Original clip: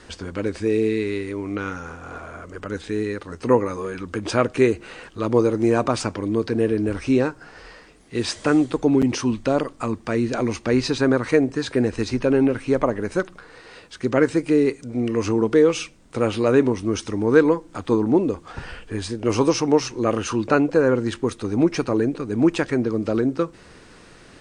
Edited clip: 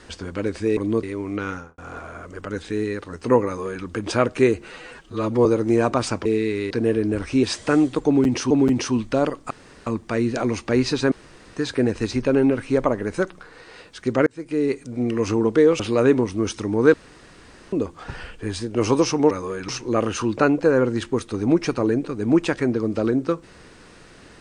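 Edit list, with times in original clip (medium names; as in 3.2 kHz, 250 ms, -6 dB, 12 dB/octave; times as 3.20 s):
0.77–1.22 s: swap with 6.19–6.45 s
1.72–1.97 s: studio fade out
3.65–4.03 s: copy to 19.79 s
4.88–5.39 s: stretch 1.5×
7.18–8.21 s: delete
8.84–9.28 s: loop, 2 plays
9.84 s: insert room tone 0.36 s
11.09–11.54 s: room tone
14.24–14.79 s: fade in
15.77–16.28 s: delete
17.42–18.21 s: room tone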